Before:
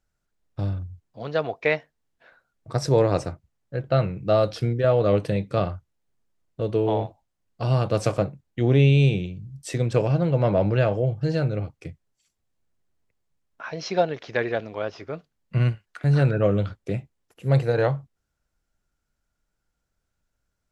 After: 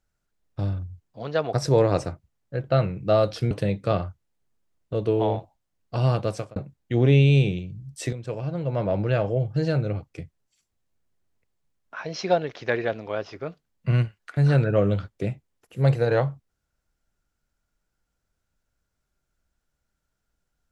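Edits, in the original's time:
1.53–2.73 cut
4.71–5.18 cut
7.8–8.23 fade out
9.8–11.22 fade in, from -13.5 dB

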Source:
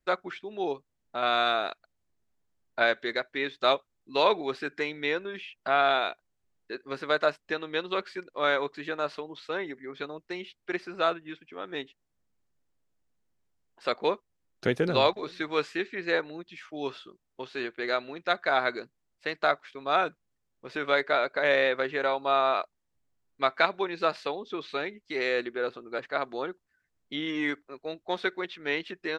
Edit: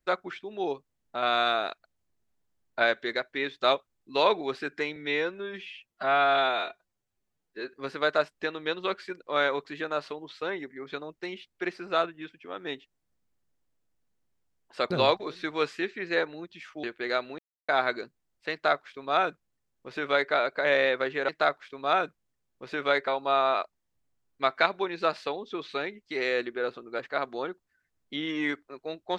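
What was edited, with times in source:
4.96–6.81 stretch 1.5×
13.98–14.87 cut
16.8–17.62 cut
18.17–18.47 mute
19.31–21.1 copy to 22.07

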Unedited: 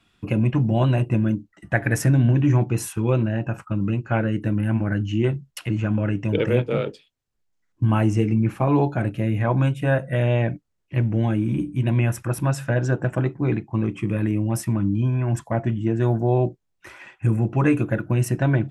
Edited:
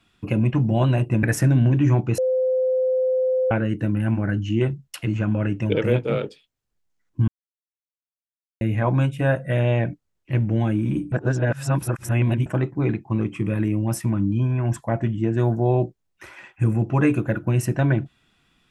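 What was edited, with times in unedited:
1.23–1.86 cut
2.81–4.14 bleep 515 Hz -17.5 dBFS
7.91–9.24 mute
11.75–13.09 reverse

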